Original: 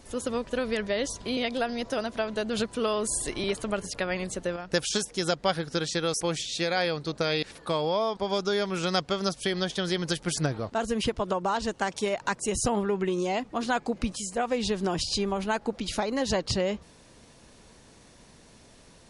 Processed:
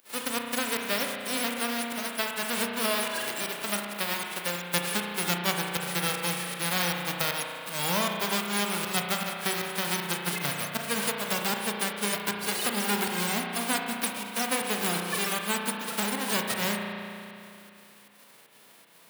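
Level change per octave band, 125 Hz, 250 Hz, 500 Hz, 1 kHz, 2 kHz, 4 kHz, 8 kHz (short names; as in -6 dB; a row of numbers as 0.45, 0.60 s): -3.0, -3.0, -6.5, 0.0, +4.0, +1.5, +3.0 dB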